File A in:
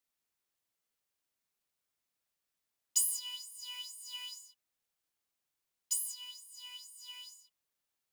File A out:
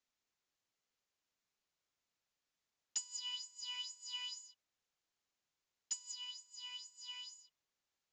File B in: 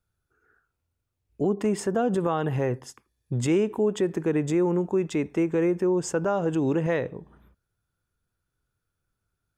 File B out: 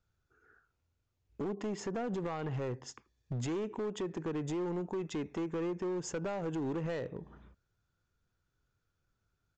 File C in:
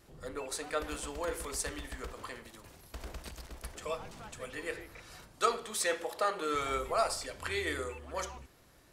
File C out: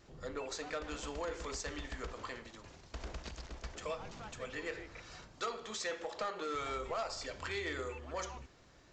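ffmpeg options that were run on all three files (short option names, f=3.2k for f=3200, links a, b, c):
-af "acompressor=threshold=-36dB:ratio=2.5,aresample=16000,asoftclip=type=hard:threshold=-32dB,aresample=44100"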